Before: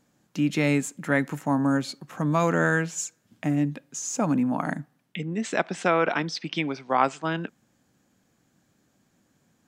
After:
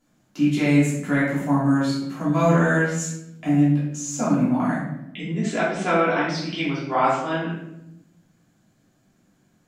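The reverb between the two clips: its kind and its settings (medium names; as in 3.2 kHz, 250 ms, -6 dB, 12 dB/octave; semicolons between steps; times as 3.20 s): simulated room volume 240 m³, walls mixed, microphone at 3.1 m; trim -7 dB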